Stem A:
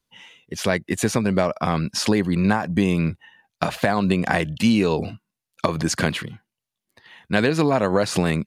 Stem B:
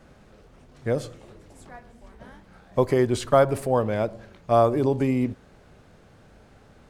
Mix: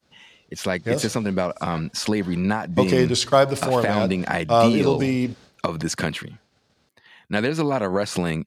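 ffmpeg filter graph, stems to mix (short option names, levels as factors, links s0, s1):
-filter_complex "[0:a]volume=0.708[s0];[1:a]agate=range=0.0224:threshold=0.00794:ratio=3:detection=peak,equalizer=f=4700:t=o:w=1.5:g=14.5,volume=1.12[s1];[s0][s1]amix=inputs=2:normalize=0,highpass=77"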